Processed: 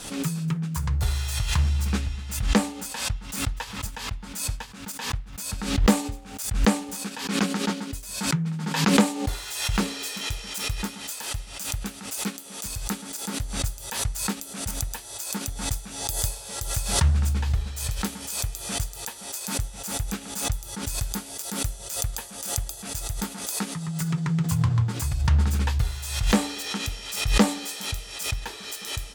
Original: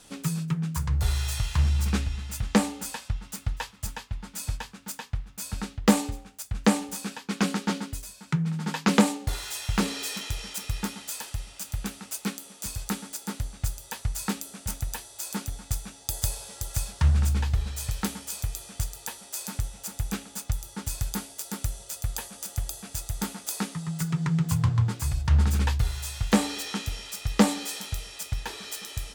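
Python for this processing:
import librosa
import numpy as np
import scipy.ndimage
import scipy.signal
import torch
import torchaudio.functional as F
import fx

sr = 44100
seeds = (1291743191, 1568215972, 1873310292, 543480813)

y = fx.pre_swell(x, sr, db_per_s=66.0)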